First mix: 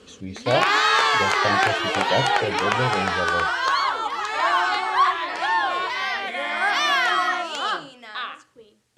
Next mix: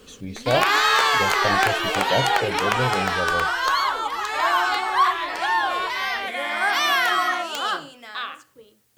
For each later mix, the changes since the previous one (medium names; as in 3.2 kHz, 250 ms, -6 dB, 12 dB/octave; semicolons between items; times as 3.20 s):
speech: remove high-pass 67 Hz; master: remove Bessel low-pass 7.3 kHz, order 4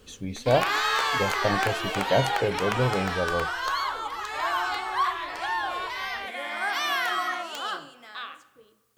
background -10.5 dB; reverb: on, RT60 1.2 s